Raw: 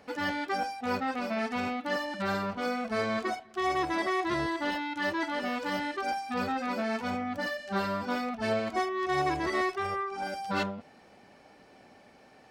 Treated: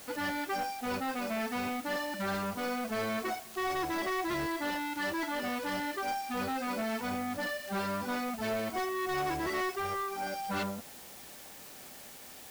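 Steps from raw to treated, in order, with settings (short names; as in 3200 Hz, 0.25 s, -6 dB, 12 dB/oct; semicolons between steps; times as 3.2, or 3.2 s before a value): soft clip -28.5 dBFS, distortion -13 dB; added noise white -50 dBFS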